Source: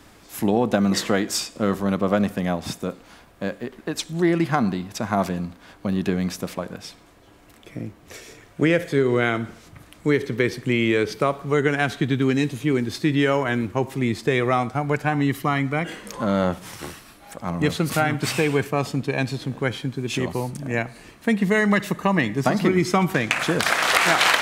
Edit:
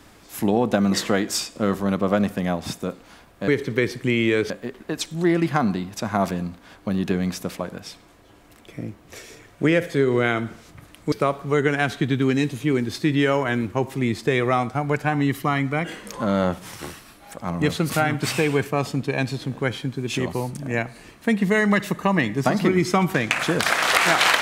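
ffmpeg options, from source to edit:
-filter_complex "[0:a]asplit=4[a][b][c][d];[a]atrim=end=3.482[e];[b]atrim=start=10.098:end=11.122[f];[c]atrim=start=3.478:end=10.102[g];[d]atrim=start=11.118[h];[e][f]acrossfade=d=0.004:c1=hsin:c2=hsin[i];[i][g]acrossfade=d=0.004:c1=hsin:c2=hsin[j];[j][h]acrossfade=d=0.004:c1=hsin:c2=hsin"

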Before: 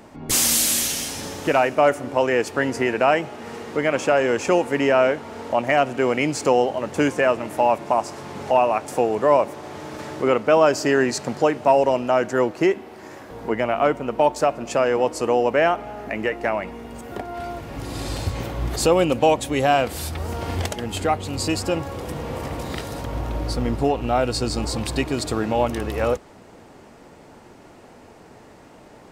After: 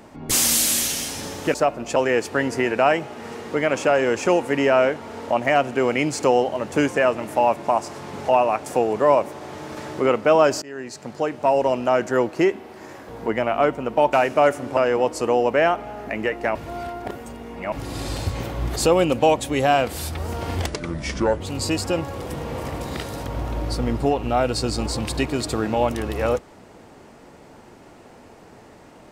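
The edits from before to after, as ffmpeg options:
-filter_complex "[0:a]asplit=10[a][b][c][d][e][f][g][h][i][j];[a]atrim=end=1.542[k];[b]atrim=start=14.348:end=14.772[l];[c]atrim=start=2.178:end=10.84,asetpts=PTS-STARTPTS,afade=t=out:st=8.658:d=0.004:c=hsin:silence=0.0630957[m];[d]atrim=start=10.84:end=14.352,asetpts=PTS-STARTPTS,afade=t=in:d=1.2:silence=0.0630957[n];[e]atrim=start=1.538:end=2.182[o];[f]atrim=start=14.768:end=16.552[p];[g]atrim=start=16.548:end=17.722,asetpts=PTS-STARTPTS,areverse[q];[h]atrim=start=17.718:end=20.664[r];[i]atrim=start=20.66:end=21.19,asetpts=PTS-STARTPTS,asetrate=31311,aresample=44100[s];[j]atrim=start=21.186[t];[k][l]acrossfade=d=0.004:c1=hsin:c2=hsin[u];[m][n]concat=n=2:v=0:a=1[v];[u][v]acrossfade=d=0.004:c1=hsin:c2=hsin[w];[w][o]acrossfade=d=0.004:c1=hsin:c2=hsin[x];[x][p]acrossfade=d=0.004:c1=hsin:c2=hsin[y];[y][q]acrossfade=d=0.004:c1=hsin:c2=hsin[z];[z][r]acrossfade=d=0.004:c1=hsin:c2=hsin[aa];[aa][s]acrossfade=d=0.004:c1=hsin:c2=hsin[ab];[ab][t]acrossfade=d=0.004:c1=hsin:c2=hsin"

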